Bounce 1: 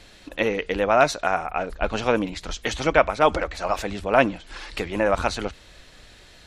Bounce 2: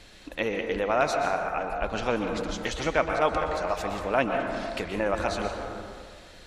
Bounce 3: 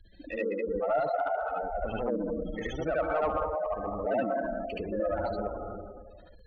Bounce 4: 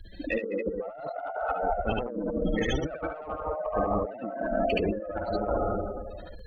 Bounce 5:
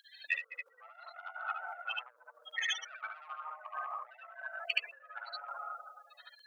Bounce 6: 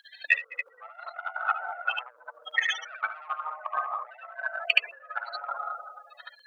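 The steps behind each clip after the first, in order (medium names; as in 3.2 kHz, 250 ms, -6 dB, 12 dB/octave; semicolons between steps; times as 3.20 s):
plate-style reverb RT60 1.8 s, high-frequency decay 0.35×, pre-delay 110 ms, DRR 4 dB; in parallel at +1 dB: compression, threshold -29 dBFS, peak gain reduction 17 dB; on the sum: trim -8.5 dB
spectral gate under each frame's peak -10 dB strong; saturation -17 dBFS, distortion -22 dB; reverse echo 73 ms -3 dB; trim -2.5 dB
compressor with a negative ratio -35 dBFS, ratio -0.5; trim +6 dB
Bessel high-pass 1.8 kHz, order 6; trim +3 dB
treble shelf 2.7 kHz -11.5 dB; transient shaper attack +8 dB, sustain +2 dB; trim +8.5 dB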